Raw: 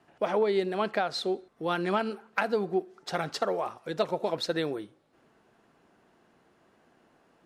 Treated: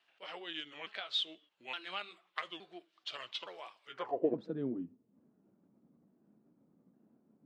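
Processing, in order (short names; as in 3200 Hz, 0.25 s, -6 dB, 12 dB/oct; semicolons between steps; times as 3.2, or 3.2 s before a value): repeated pitch sweeps -5.5 st, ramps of 0.867 s; band-pass sweep 3200 Hz -> 220 Hz, 3.85–4.38; gain +3 dB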